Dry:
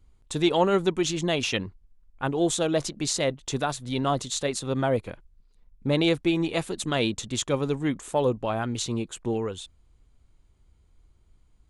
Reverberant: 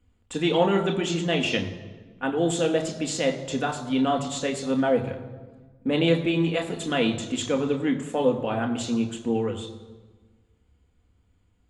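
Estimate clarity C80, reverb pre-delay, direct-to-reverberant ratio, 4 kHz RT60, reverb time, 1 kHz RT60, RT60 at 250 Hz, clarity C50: 12.0 dB, 3 ms, 3.0 dB, 1.0 s, 1.3 s, 1.3 s, 1.7 s, 10.5 dB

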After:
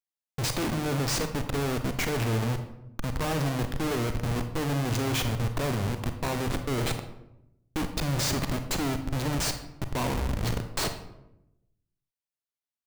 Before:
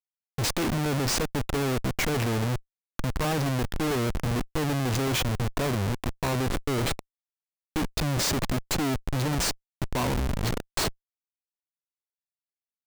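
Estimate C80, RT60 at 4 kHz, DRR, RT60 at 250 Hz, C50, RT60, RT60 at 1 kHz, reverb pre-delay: 11.5 dB, 0.50 s, 7.0 dB, 1.1 s, 9.0 dB, 0.85 s, 0.75 s, 31 ms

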